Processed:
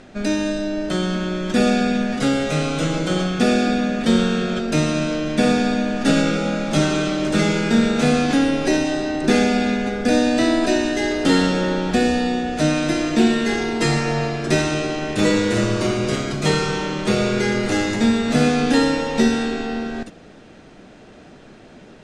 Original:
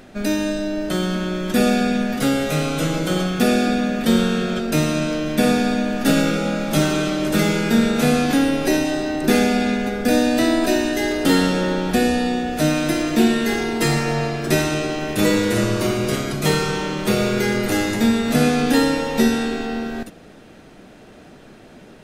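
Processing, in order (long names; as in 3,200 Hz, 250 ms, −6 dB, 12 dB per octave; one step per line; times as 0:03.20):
low-pass filter 8,200 Hz 24 dB per octave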